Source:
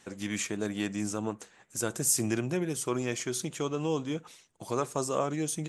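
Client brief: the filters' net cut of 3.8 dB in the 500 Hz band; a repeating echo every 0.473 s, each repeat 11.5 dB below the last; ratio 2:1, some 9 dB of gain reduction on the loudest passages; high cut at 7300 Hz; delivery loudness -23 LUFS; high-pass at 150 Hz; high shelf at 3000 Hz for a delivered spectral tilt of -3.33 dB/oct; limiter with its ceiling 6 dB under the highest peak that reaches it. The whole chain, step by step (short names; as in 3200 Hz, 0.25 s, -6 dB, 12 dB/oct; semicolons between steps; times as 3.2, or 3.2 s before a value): HPF 150 Hz; LPF 7300 Hz; bell 500 Hz -5 dB; high shelf 3000 Hz +5.5 dB; compressor 2:1, threshold -38 dBFS; limiter -27.5 dBFS; feedback echo 0.473 s, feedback 27%, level -11.5 dB; gain +16 dB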